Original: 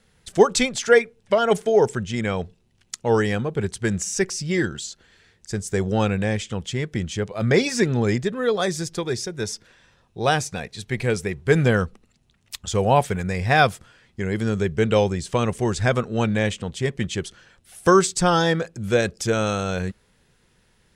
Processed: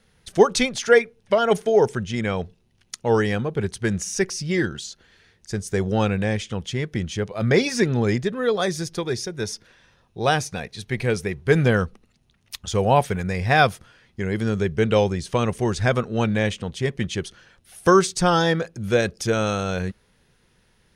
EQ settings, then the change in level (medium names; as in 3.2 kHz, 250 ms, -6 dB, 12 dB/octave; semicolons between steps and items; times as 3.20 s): band-stop 7.6 kHz, Q 5.5; 0.0 dB